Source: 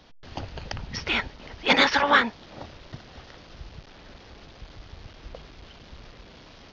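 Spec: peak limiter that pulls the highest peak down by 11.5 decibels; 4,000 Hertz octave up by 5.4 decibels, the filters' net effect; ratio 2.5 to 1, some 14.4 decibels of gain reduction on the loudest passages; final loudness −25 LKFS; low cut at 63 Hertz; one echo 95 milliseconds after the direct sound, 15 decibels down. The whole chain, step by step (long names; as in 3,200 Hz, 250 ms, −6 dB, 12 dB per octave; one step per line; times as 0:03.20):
high-pass filter 63 Hz
parametric band 4,000 Hz +6.5 dB
downward compressor 2.5 to 1, threshold −35 dBFS
brickwall limiter −29 dBFS
single-tap delay 95 ms −15 dB
level +17 dB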